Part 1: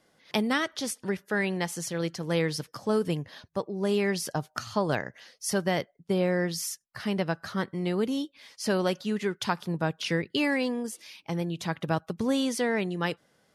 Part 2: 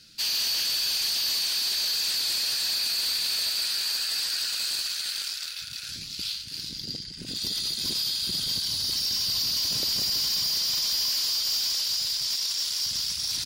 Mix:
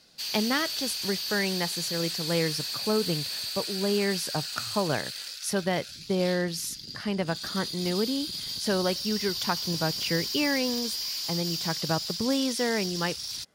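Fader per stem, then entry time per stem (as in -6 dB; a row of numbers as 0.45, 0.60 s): -0.5, -6.5 dB; 0.00, 0.00 s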